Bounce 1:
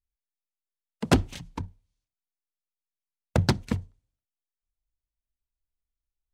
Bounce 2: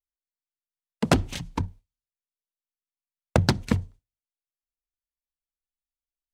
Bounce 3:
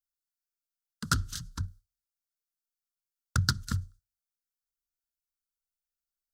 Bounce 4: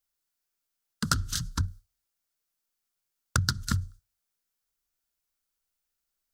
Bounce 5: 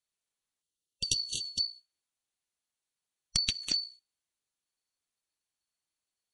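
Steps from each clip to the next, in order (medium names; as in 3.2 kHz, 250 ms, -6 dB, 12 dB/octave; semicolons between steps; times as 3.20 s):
gate with hold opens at -45 dBFS; compression 10:1, threshold -22 dBFS, peak gain reduction 8.5 dB; trim +6.5 dB
FFT filter 110 Hz 0 dB, 780 Hz -28 dB, 1.4 kHz +8 dB, 2.3 kHz -19 dB, 3.2 kHz -5 dB, 4.8 kHz +6 dB, 9.4 kHz +5 dB, 14 kHz +8 dB; trim -4 dB
compression 6:1, threshold -31 dBFS, peak gain reduction 10.5 dB; trim +8.5 dB
four frequency bands reordered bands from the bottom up 2341; spectral selection erased 0.62–1.79 s, 540–2700 Hz; trim -3.5 dB; MP3 48 kbps 48 kHz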